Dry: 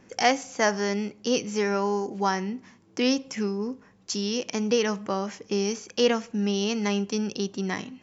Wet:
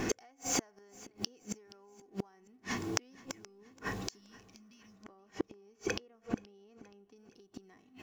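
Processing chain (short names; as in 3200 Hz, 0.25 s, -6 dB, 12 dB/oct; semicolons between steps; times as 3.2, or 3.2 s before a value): G.711 law mismatch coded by mu; 4.21–5 spectral repair 250–2100 Hz after; 4.96–7.16 high shelf 3000 Hz -12 dB; comb 2.7 ms, depth 46%; dynamic EQ 3900 Hz, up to -7 dB, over -42 dBFS, Q 0.79; compressor 12:1, threshold -32 dBFS, peak gain reduction 18 dB; flipped gate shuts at -32 dBFS, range -38 dB; feedback echo 0.475 s, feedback 43%, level -21 dB; gain +13.5 dB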